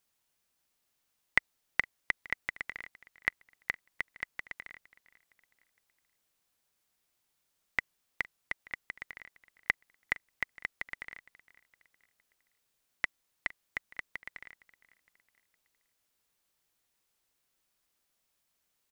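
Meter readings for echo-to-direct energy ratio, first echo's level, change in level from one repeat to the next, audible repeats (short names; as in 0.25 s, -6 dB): -21.0 dB, -22.0 dB, -7.0 dB, 2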